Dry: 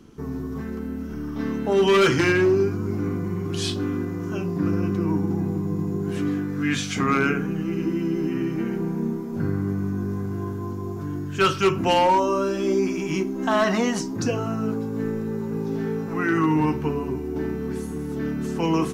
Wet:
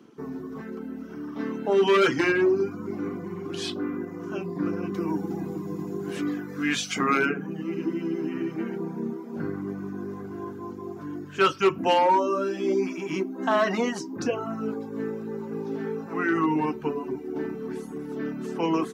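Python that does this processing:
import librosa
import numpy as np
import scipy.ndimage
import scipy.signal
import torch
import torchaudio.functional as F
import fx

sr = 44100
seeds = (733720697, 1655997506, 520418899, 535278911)

y = fx.high_shelf(x, sr, hz=3300.0, db=9.0, at=(4.94, 7.26))
y = scipy.signal.sosfilt(scipy.signal.butter(2, 240.0, 'highpass', fs=sr, output='sos'), y)
y = fx.dereverb_blind(y, sr, rt60_s=0.7)
y = fx.peak_eq(y, sr, hz=11000.0, db=-8.5, octaves=2.2)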